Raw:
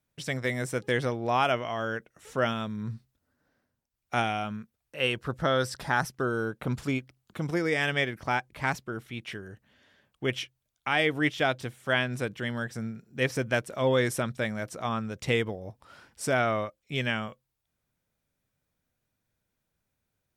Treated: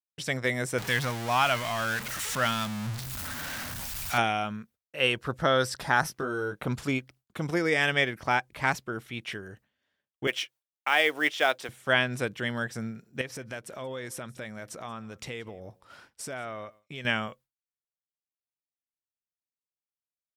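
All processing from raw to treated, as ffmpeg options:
ffmpeg -i in.wav -filter_complex "[0:a]asettb=1/sr,asplit=3[link_01][link_02][link_03];[link_01]atrim=end=0.784[link_04];[link_02]atrim=start=0.78:end=4.18,asetpts=PTS-STARTPTS,afade=type=in:duration=0.004:curve=qsin,afade=type=out:start_time=3.396:duration=0.004:curve=qsin,aeval=exprs='val(0)+0.5*0.0316*sgn(val(0))':channel_layout=same,equalizer=frequency=410:width=1.1:gain=-13[link_05];[link_03]atrim=start=4.176[link_06];[link_04][link_05]acrossfade=duration=0.004:curve1=hsin:curve2=qsin[link_07];[link_07][link_06]acrossfade=duration=0.004:curve1=qsin:curve2=hsin,asettb=1/sr,asplit=3[link_08][link_09][link_10];[link_08]atrim=end=6.014[link_11];[link_09]atrim=start=6.01:end=6.63,asetpts=PTS-STARTPTS,afade=type=in:duration=0.004:curve=qsin,afade=type=out:start_time=0.616:duration=0.004:curve=qsin,bandreject=frequency=7500:width=18,acompressor=threshold=-29dB:ratio=6:attack=3.2:release=140:knee=1:detection=peak,asplit=2[link_12][link_13];[link_13]adelay=20,volume=-5dB[link_14];[link_12][link_14]amix=inputs=2:normalize=0,atrim=end_sample=27342[link_15];[link_10]atrim=start=6.626[link_16];[link_11][link_15]acrossfade=duration=0.004:curve1=hsin:curve2=qsin[link_17];[link_17][link_16]acrossfade=duration=0.004:curve1=qsin:curve2=hsin,asettb=1/sr,asplit=3[link_18][link_19][link_20];[link_18]atrim=end=10.274[link_21];[link_19]atrim=start=10.27:end=11.69,asetpts=PTS-STARTPTS,afade=type=in:duration=0.004:curve=qsin,afade=type=out:start_time=1.416:duration=0.004:curve=qsin,highpass=420,acrusher=bits=6:mode=log:mix=0:aa=0.000001[link_22];[link_20]atrim=start=11.686[link_23];[link_21][link_22]acrossfade=duration=0.004:curve1=hsin:curve2=qsin[link_24];[link_24][link_23]acrossfade=duration=0.004:curve1=qsin:curve2=hsin,asettb=1/sr,asplit=3[link_25][link_26][link_27];[link_25]atrim=end=13.214[link_28];[link_26]atrim=start=13.21:end=17.05,asetpts=PTS-STARTPTS,afade=type=in:duration=0.004:curve=qsin,afade=type=out:start_time=3.836:duration=0.004:curve=qsin,acompressor=threshold=-40dB:ratio=3:attack=3.2:release=140:knee=1:detection=peak,aecho=1:1:180:0.0708,atrim=end_sample=169344[link_29];[link_27]atrim=start=17.046[link_30];[link_28][link_29]acrossfade=duration=0.004:curve1=hsin:curve2=qsin[link_31];[link_31][link_30]acrossfade=duration=0.004:curve1=qsin:curve2=hsin,agate=range=-33dB:threshold=-50dB:ratio=3:detection=peak,lowshelf=frequency=360:gain=-4.5,volume=3dB" out.wav

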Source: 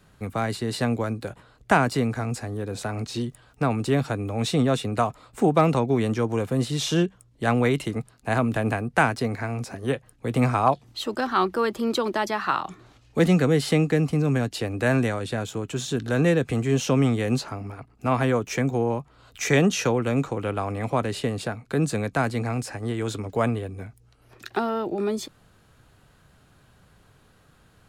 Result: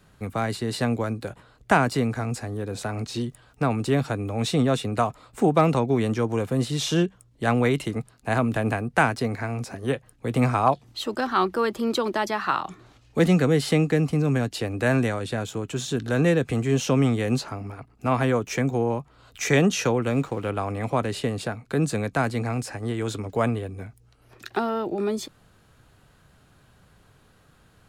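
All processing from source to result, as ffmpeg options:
ffmpeg -i in.wav -filter_complex "[0:a]asettb=1/sr,asplit=3[link_01][link_02][link_03];[link_01]atrim=end=20.104[link_04];[link_02]atrim=start=20.1:end=20.5,asetpts=PTS-STARTPTS,afade=type=in:duration=0.004:curve=qsin,afade=type=out:start_time=0.396:duration=0.004:curve=qsin,bandreject=frequency=6300:width=14,aeval=exprs='sgn(val(0))*max(abs(val(0))-0.00355,0)':channel_layout=same[link_05];[link_03]atrim=start=20.496[link_06];[link_04][link_05]acrossfade=duration=0.004:curve1=hsin:curve2=qsin[link_07];[link_07][link_06]acrossfade=duration=0.004:curve1=qsin:curve2=hsin" out.wav

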